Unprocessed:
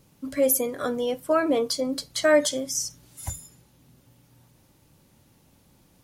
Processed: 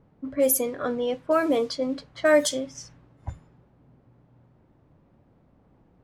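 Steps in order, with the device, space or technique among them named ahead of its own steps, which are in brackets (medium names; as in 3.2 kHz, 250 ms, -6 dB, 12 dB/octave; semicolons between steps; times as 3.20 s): cassette deck with a dynamic noise filter (white noise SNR 25 dB; level-controlled noise filter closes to 610 Hz, open at -17.5 dBFS)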